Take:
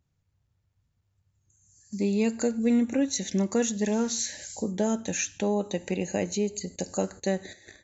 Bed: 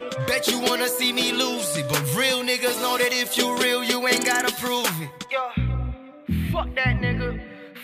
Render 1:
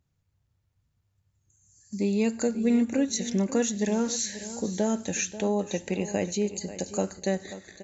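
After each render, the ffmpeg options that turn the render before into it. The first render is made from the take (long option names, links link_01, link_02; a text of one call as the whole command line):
ffmpeg -i in.wav -af "aecho=1:1:538|1076|1614:0.2|0.0519|0.0135" out.wav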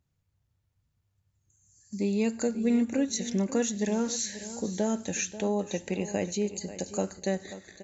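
ffmpeg -i in.wav -af "volume=-2dB" out.wav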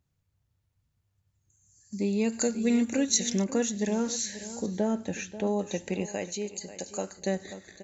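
ffmpeg -i in.wav -filter_complex "[0:a]asettb=1/sr,asplit=3[link_01][link_02][link_03];[link_01]atrim=end=2.324[link_04];[link_02]atrim=start=2.32:end=3.44,asetpts=PTS-STARTPTS,afade=type=in:duration=0.004:curve=qsin,afade=type=out:start_time=1.116:duration=0.004:curve=qsin,highshelf=frequency=2200:gain=9[link_05];[link_03]atrim=start=3.436[link_06];[link_04][link_05]acrossfade=duration=0.004:curve1=hsin:curve2=qsin[link_07];[link_07][link_06]acrossfade=duration=0.004:curve1=qsin:curve2=hsin,asettb=1/sr,asplit=3[link_08][link_09][link_10];[link_08]atrim=end=4.664[link_11];[link_09]atrim=start=4.66:end=5.47,asetpts=PTS-STARTPTS,afade=type=in:duration=0.004:curve=qsin,afade=type=out:start_time=0.806:duration=0.004:curve=qsin,aemphasis=mode=reproduction:type=75fm[link_12];[link_10]atrim=start=5.466[link_13];[link_11][link_12]acrossfade=duration=0.004:curve1=hsin:curve2=qsin[link_14];[link_14][link_13]acrossfade=duration=0.004:curve1=qsin:curve2=hsin,asettb=1/sr,asplit=3[link_15][link_16][link_17];[link_15]atrim=end=6.064[link_18];[link_16]atrim=start=6.06:end=7.2,asetpts=PTS-STARTPTS,afade=type=in:duration=0.004:curve=qsin,afade=type=out:start_time=1.136:duration=0.004:curve=qsin,lowshelf=frequency=350:gain=-9.5[link_19];[link_17]atrim=start=7.196[link_20];[link_18][link_19]acrossfade=duration=0.004:curve1=hsin:curve2=qsin[link_21];[link_21][link_20]acrossfade=duration=0.004:curve1=qsin:curve2=hsin" out.wav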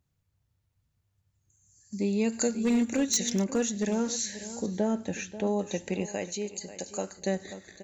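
ffmpeg -i in.wav -filter_complex "[0:a]asettb=1/sr,asplit=3[link_01][link_02][link_03];[link_01]atrim=end=2.484[link_04];[link_02]atrim=start=2.48:end=3.96,asetpts=PTS-STARTPTS,afade=type=in:duration=0.004:curve=qsin,afade=type=out:start_time=1.476:duration=0.004:curve=qsin,asoftclip=type=hard:threshold=-20dB[link_05];[link_03]atrim=start=3.956[link_06];[link_04][link_05]acrossfade=duration=0.004:curve1=hsin:curve2=qsin[link_07];[link_07][link_06]acrossfade=duration=0.004:curve1=qsin:curve2=hsin" out.wav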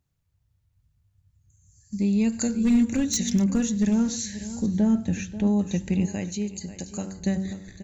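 ffmpeg -i in.wav -af "bandreject=frequency=95.48:width_type=h:width=4,bandreject=frequency=190.96:width_type=h:width=4,bandreject=frequency=286.44:width_type=h:width=4,bandreject=frequency=381.92:width_type=h:width=4,bandreject=frequency=477.4:width_type=h:width=4,bandreject=frequency=572.88:width_type=h:width=4,bandreject=frequency=668.36:width_type=h:width=4,bandreject=frequency=763.84:width_type=h:width=4,bandreject=frequency=859.32:width_type=h:width=4,bandreject=frequency=954.8:width_type=h:width=4,bandreject=frequency=1050.28:width_type=h:width=4,bandreject=frequency=1145.76:width_type=h:width=4,bandreject=frequency=1241.24:width_type=h:width=4,bandreject=frequency=1336.72:width_type=h:width=4,bandreject=frequency=1432.2:width_type=h:width=4,bandreject=frequency=1527.68:width_type=h:width=4,bandreject=frequency=1623.16:width_type=h:width=4,asubboost=boost=10.5:cutoff=160" out.wav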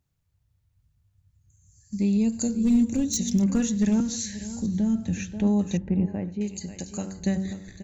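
ffmpeg -i in.wav -filter_complex "[0:a]asettb=1/sr,asplit=3[link_01][link_02][link_03];[link_01]atrim=end=2.174[link_04];[link_02]atrim=start=2.17:end=3.43,asetpts=PTS-STARTPTS,afade=type=in:duration=0.004:curve=qsin,afade=type=out:start_time=1.256:duration=0.004:curve=qsin,equalizer=frequency=1700:width=0.84:gain=-12[link_05];[link_03]atrim=start=3.426[link_06];[link_04][link_05]acrossfade=duration=0.004:curve1=hsin:curve2=qsin[link_07];[link_07][link_06]acrossfade=duration=0.004:curve1=qsin:curve2=hsin,asettb=1/sr,asplit=3[link_08][link_09][link_10];[link_08]atrim=end=4.004[link_11];[link_09]atrim=start=4:end=5.2,asetpts=PTS-STARTPTS,afade=type=in:duration=0.004:curve=qsin,afade=type=out:start_time=1.196:duration=0.004:curve=qsin,acrossover=split=230|3000[link_12][link_13][link_14];[link_13]acompressor=threshold=-39dB:ratio=2:attack=3.2:release=140:knee=2.83:detection=peak[link_15];[link_12][link_15][link_14]amix=inputs=3:normalize=0[link_16];[link_10]atrim=start=5.196[link_17];[link_11][link_16]acrossfade=duration=0.004:curve1=hsin:curve2=qsin[link_18];[link_18][link_17]acrossfade=duration=0.004:curve1=qsin:curve2=hsin,asettb=1/sr,asplit=3[link_19][link_20][link_21];[link_19]atrim=end=5.774[link_22];[link_20]atrim=start=5.77:end=6.41,asetpts=PTS-STARTPTS,afade=type=in:duration=0.004:curve=qsin,afade=type=out:start_time=0.636:duration=0.004:curve=qsin,lowpass=1200[link_23];[link_21]atrim=start=6.406[link_24];[link_22][link_23]acrossfade=duration=0.004:curve1=hsin:curve2=qsin[link_25];[link_25][link_24]acrossfade=duration=0.004:curve1=qsin:curve2=hsin" out.wav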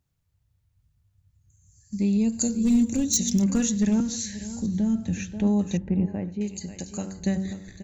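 ffmpeg -i in.wav -filter_complex "[0:a]asettb=1/sr,asplit=3[link_01][link_02][link_03];[link_01]atrim=end=2.384[link_04];[link_02]atrim=start=2.38:end=3.81,asetpts=PTS-STARTPTS,afade=type=in:duration=0.004:curve=qsin,afade=type=out:start_time=1.426:duration=0.004:curve=qsin,highshelf=frequency=3600:gain=6.5[link_05];[link_03]atrim=start=3.806[link_06];[link_04][link_05]acrossfade=duration=0.004:curve1=hsin:curve2=qsin[link_07];[link_07][link_06]acrossfade=duration=0.004:curve1=qsin:curve2=hsin" out.wav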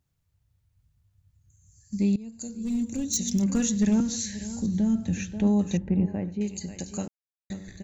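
ffmpeg -i in.wav -filter_complex "[0:a]asplit=4[link_01][link_02][link_03][link_04];[link_01]atrim=end=2.16,asetpts=PTS-STARTPTS,afade=type=out:start_time=2.156:duration=0.004:curve=hsin:silence=0.0944061[link_05];[link_02]atrim=start=2.16:end=7.08,asetpts=PTS-STARTPTS,afade=type=in:duration=1.73:silence=0.0944061,afade=type=out:start_time=4.916:duration=0.004:curve=hsin[link_06];[link_03]atrim=start=7.08:end=7.5,asetpts=PTS-STARTPTS,volume=0[link_07];[link_04]atrim=start=7.5,asetpts=PTS-STARTPTS,afade=type=in:duration=0.004:curve=hsin[link_08];[link_05][link_06][link_07][link_08]concat=n=4:v=0:a=1" out.wav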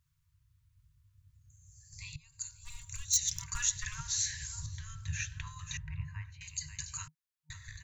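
ffmpeg -i in.wav -af "afftfilt=real='re*(1-between(b*sr/4096,160,920))':imag='im*(1-between(b*sr/4096,160,920))':win_size=4096:overlap=0.75,adynamicequalizer=threshold=0.00158:dfrequency=1700:dqfactor=3.6:tfrequency=1700:tqfactor=3.6:attack=5:release=100:ratio=0.375:range=1.5:mode=boostabove:tftype=bell" out.wav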